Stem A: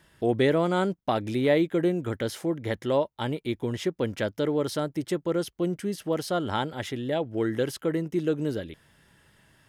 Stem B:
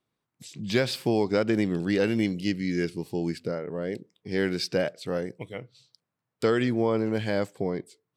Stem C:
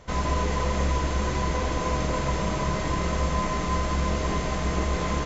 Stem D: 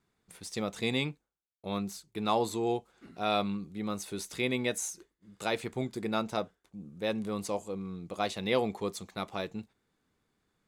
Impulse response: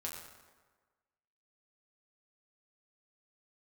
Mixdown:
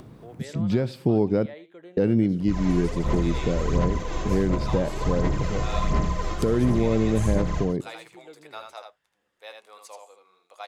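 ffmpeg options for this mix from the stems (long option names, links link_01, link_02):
-filter_complex "[0:a]acrossover=split=450 6000:gain=0.158 1 0.224[link_01][link_02][link_03];[link_01][link_02][link_03]amix=inputs=3:normalize=0,volume=-16.5dB,asplit=3[link_04][link_05][link_06];[link_05]volume=-15.5dB[link_07];[1:a]tiltshelf=frequency=1100:gain=8.5,acompressor=mode=upward:threshold=-23dB:ratio=2.5,volume=-2.5dB,asplit=3[link_08][link_09][link_10];[link_08]atrim=end=1.46,asetpts=PTS-STARTPTS,afade=type=out:start_time=1.456:duration=0.004:curve=hsin[link_11];[link_09]atrim=start=1.46:end=1.97,asetpts=PTS-STARTPTS,volume=0[link_12];[link_10]atrim=start=1.97,asetpts=PTS-STARTPTS,afade=type=in:duration=0.004:curve=hsin[link_13];[link_11][link_12][link_13]concat=n=3:v=0:a=1,asplit=2[link_14][link_15];[link_15]volume=-23dB[link_16];[2:a]aphaser=in_gain=1:out_gain=1:delay=2.8:decay=0.67:speed=1.4:type=sinusoidal,adelay=2400,volume=-7dB,asplit=2[link_17][link_18];[link_18]volume=-7dB[link_19];[3:a]highpass=frequency=640:width=0.5412,highpass=frequency=640:width=1.3066,adelay=2400,volume=-6.5dB,asplit=2[link_20][link_21];[link_21]volume=-5dB[link_22];[link_06]apad=whole_len=337630[link_23];[link_17][link_23]sidechaincompress=threshold=-46dB:ratio=8:attack=47:release=242[link_24];[link_07][link_16][link_19][link_22]amix=inputs=4:normalize=0,aecho=0:1:80:1[link_25];[link_04][link_14][link_24][link_20][link_25]amix=inputs=5:normalize=0,lowshelf=frequency=220:gain=6,alimiter=limit=-12dB:level=0:latency=1:release=342"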